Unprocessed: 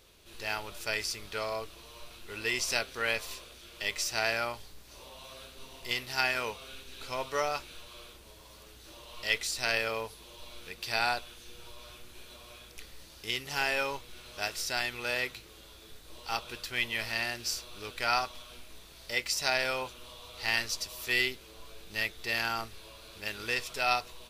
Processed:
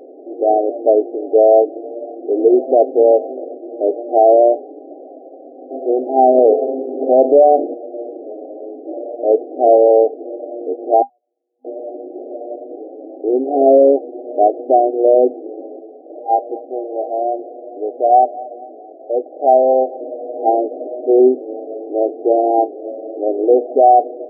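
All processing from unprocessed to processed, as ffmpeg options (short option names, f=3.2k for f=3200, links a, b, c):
-filter_complex "[0:a]asettb=1/sr,asplit=3[a][b][c];[a]atrim=end=4.934[d];[b]atrim=start=4.93:end=5.71,asetpts=PTS-STARTPTS,afade=t=in:d=0.004:c=qsin,afade=t=out:st=0.776:d=0.004:c=qsin,tremolo=f=180:d=0.889,aeval=exprs='(mod(266*val(0)+1,2)-1)/266':c=same[e];[c]atrim=start=5.706[f];[d][e]acrossfade=d=0.004:c1=hsin:c2=qsin[g];[g][f]acrossfade=d=0.004:c1=qsin:c2=hsin,asettb=1/sr,asplit=3[h][i][j];[h]atrim=end=6.384[k];[i]atrim=start=6.38:end=7.74,asetpts=PTS-STARTPTS,afade=t=in:d=0.004:c=qsin,afade=t=out:st=1.356:d=0.004:c=qsin,bandreject=f=72.73:t=h:w=4,bandreject=f=145.46:t=h:w=4,bandreject=f=218.19:t=h:w=4,bandreject=f=290.92:t=h:w=4,bandreject=f=363.65:t=h:w=4,bandreject=f=436.38:t=h:w=4,acontrast=41[l];[j]atrim=start=7.736[m];[k][l]acrossfade=d=0.004:c1=hsin:c2=qsin[n];[n][m]acrossfade=d=0.004:c1=qsin:c2=hsin,asettb=1/sr,asplit=3[o][p][q];[o]atrim=end=11.024[r];[p]atrim=start=11.02:end=11.65,asetpts=PTS-STARTPTS,afade=t=in:d=0.004:c=qsin,afade=t=out:st=0.626:d=0.004:c=qsin,acompressor=threshold=-45dB:ratio=4:attack=3.2:release=140:knee=1:detection=peak,bandpass=f=7k:t=q:w=8.9[s];[q]atrim=start=11.646[t];[r][s]acrossfade=d=0.004:c1=hsin:c2=qsin[u];[u][t]acrossfade=d=0.004:c1=qsin:c2=hsin,asettb=1/sr,asplit=3[v][w][x];[v]atrim=end=15.794[y];[w]atrim=start=15.79:end=20.01,asetpts=PTS-STARTPTS,afade=t=in:d=0.004:c=qsin,afade=t=out:st=4.216:d=0.004:c=qsin,highpass=f=810:p=1,aecho=1:1:226|452|678|904:0.0944|0.0481|0.0246|0.0125,atrim=end_sample=186102[z];[x]atrim=start=20.006[aa];[y][z]acrossfade=d=0.004:c1=hsin:c2=qsin[ab];[ab][aa]acrossfade=d=0.004:c1=qsin:c2=hsin,afftfilt=real='re*between(b*sr/4096,250,800)':imag='im*between(b*sr/4096,250,800)':win_size=4096:overlap=0.75,lowshelf=f=390:g=4.5,alimiter=level_in=28.5dB:limit=-1dB:release=50:level=0:latency=1,volume=-1dB"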